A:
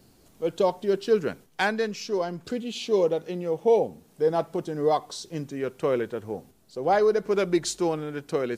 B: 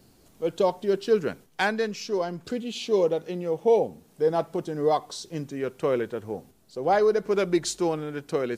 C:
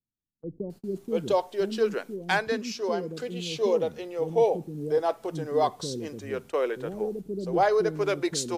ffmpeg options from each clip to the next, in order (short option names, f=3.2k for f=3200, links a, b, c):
-af anull
-filter_complex "[0:a]acrossover=split=330[a][b];[b]adelay=700[c];[a][c]amix=inputs=2:normalize=0,agate=range=-36dB:threshold=-43dB:ratio=16:detection=peak"